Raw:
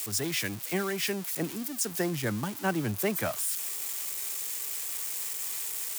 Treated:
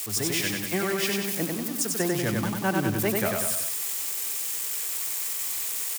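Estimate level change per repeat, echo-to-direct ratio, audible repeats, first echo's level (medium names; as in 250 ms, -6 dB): -5.0 dB, -1.5 dB, 4, -3.0 dB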